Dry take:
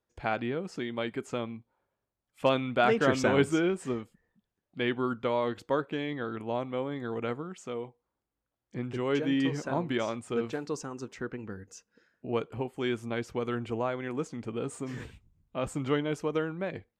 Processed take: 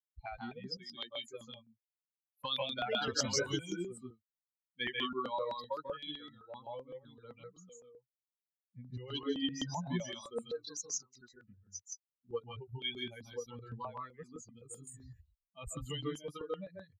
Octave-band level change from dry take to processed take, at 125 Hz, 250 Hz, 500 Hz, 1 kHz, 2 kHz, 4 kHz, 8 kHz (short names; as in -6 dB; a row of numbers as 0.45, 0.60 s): -9.5, -12.0, -11.5, -9.0, -9.5, +2.0, +5.0 dB